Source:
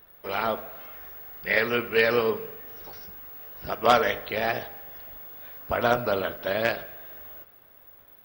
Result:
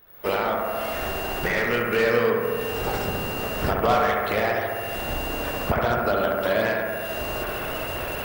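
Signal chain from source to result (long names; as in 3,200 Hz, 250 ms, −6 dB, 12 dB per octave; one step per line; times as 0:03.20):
camcorder AGC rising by 47 dB per second
bucket-brigade delay 68 ms, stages 1,024, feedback 79%, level −4 dB
slew-rate limiting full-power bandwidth 210 Hz
level −2 dB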